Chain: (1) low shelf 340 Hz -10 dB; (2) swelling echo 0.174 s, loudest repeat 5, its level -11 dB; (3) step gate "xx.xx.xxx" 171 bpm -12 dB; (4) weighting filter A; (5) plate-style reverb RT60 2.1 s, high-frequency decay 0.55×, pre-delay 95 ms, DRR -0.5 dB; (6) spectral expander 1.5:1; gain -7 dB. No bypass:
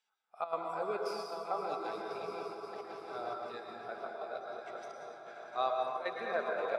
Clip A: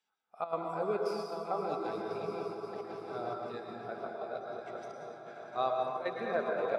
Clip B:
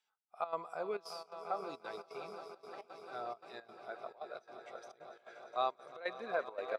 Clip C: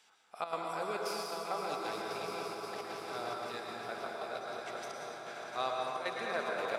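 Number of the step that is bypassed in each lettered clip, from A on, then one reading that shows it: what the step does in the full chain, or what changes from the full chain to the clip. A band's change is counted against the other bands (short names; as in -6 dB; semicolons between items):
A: 1, loudness change +2.0 LU; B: 5, momentary loudness spread change +3 LU; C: 6, 500 Hz band -4.5 dB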